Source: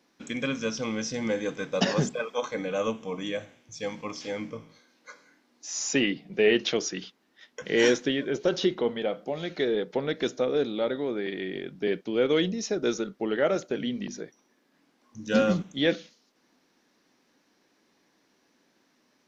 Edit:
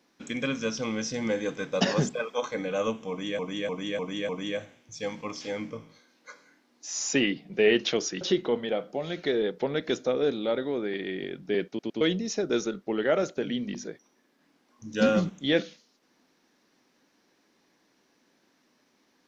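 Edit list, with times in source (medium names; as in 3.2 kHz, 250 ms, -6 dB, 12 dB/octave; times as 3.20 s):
3.09–3.39 s: loop, 5 plays
7.01–8.54 s: delete
12.01 s: stutter in place 0.11 s, 3 plays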